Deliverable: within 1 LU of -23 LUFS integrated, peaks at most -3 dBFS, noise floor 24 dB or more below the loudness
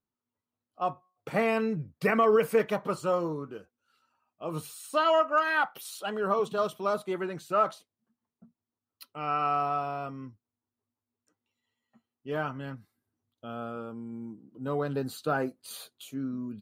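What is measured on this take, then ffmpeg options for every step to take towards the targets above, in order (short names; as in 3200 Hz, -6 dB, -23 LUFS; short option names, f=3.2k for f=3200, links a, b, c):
loudness -29.5 LUFS; peak -13.0 dBFS; loudness target -23.0 LUFS
-> -af "volume=6.5dB"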